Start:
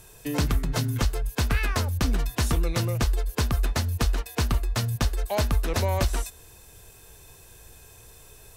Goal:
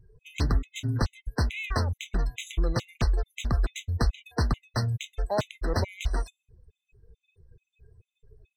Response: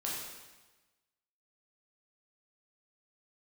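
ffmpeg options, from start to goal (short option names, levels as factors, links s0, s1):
-af "afftdn=nr=29:nf=-45,adynamicsmooth=sensitivity=4:basefreq=4900,afftfilt=real='re*gt(sin(2*PI*2.3*pts/sr)*(1-2*mod(floor(b*sr/1024/2000),2)),0)':imag='im*gt(sin(2*PI*2.3*pts/sr)*(1-2*mod(floor(b*sr/1024/2000),2)),0)':win_size=1024:overlap=0.75"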